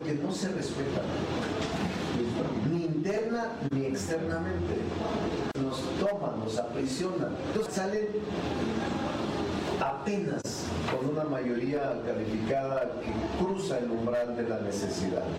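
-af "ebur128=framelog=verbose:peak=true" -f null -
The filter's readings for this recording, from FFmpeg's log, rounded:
Integrated loudness:
  I:         -31.5 LUFS
  Threshold: -41.5 LUFS
Loudness range:
  LRA:         0.7 LU
  Threshold: -51.4 LUFS
  LRA low:   -31.8 LUFS
  LRA high:  -31.1 LUFS
True peak:
  Peak:      -15.9 dBFS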